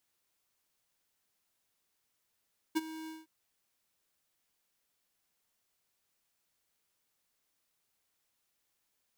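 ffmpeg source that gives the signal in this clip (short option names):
-f lavfi -i "aevalsrc='0.0422*(2*lt(mod(318*t,1),0.5)-1)':d=0.513:s=44100,afade=t=in:d=0.02,afade=t=out:st=0.02:d=0.029:silence=0.158,afade=t=out:st=0.33:d=0.183"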